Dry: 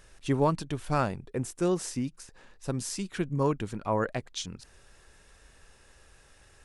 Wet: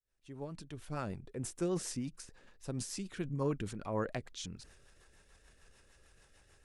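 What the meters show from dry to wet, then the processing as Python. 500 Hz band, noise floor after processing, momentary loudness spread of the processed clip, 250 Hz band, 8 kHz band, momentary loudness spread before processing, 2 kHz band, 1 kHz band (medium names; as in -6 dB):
-9.0 dB, -66 dBFS, 15 LU, -8.0 dB, -5.5 dB, 12 LU, -9.5 dB, -13.0 dB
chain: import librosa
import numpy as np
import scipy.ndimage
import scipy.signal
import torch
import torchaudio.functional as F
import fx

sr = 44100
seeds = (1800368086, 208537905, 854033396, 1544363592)

y = fx.fade_in_head(x, sr, length_s=1.67)
y = fx.transient(y, sr, attack_db=0, sustain_db=6)
y = fx.rotary(y, sr, hz=6.7)
y = y * 10.0 ** (-5.5 / 20.0)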